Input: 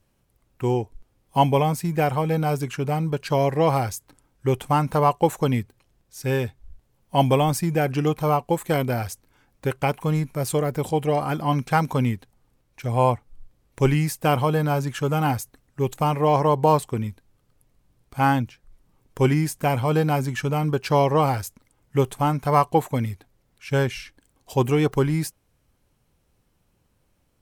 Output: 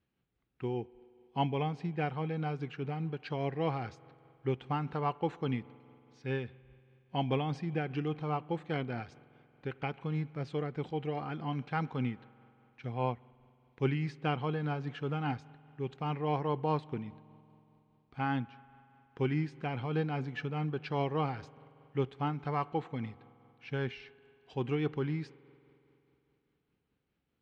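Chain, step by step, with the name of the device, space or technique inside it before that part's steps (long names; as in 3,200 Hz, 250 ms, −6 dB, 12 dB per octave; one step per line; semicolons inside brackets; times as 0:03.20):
combo amplifier with spring reverb and tremolo (spring reverb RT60 3.1 s, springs 46 ms, chirp 30 ms, DRR 20 dB; amplitude tremolo 4.9 Hz, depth 32%; loudspeaker in its box 76–3,900 Hz, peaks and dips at 100 Hz −9 dB, 590 Hz −9 dB, 990 Hz −6 dB)
level −9 dB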